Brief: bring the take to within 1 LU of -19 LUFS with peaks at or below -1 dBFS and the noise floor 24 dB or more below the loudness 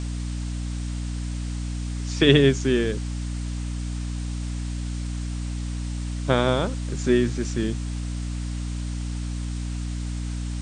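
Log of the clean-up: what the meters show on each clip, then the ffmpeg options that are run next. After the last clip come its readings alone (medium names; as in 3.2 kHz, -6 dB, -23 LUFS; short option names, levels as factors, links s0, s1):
hum 60 Hz; highest harmonic 300 Hz; hum level -26 dBFS; noise floor -29 dBFS; noise floor target -51 dBFS; loudness -26.5 LUFS; peak level -2.0 dBFS; loudness target -19.0 LUFS
-> -af "bandreject=f=60:t=h:w=6,bandreject=f=120:t=h:w=6,bandreject=f=180:t=h:w=6,bandreject=f=240:t=h:w=6,bandreject=f=300:t=h:w=6"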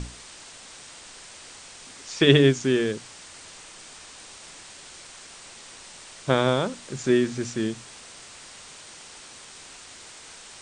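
hum not found; noise floor -46 dBFS; noise floor target -47 dBFS
-> -af "afftdn=nr=6:nf=-46"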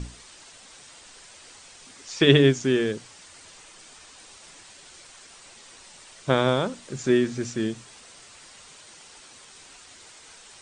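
noise floor -49 dBFS; loudness -23.0 LUFS; peak level -2.0 dBFS; loudness target -19.0 LUFS
-> -af "volume=1.58,alimiter=limit=0.891:level=0:latency=1"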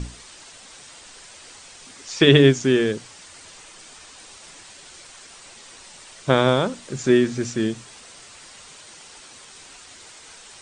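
loudness -19.0 LUFS; peak level -1.0 dBFS; noise floor -45 dBFS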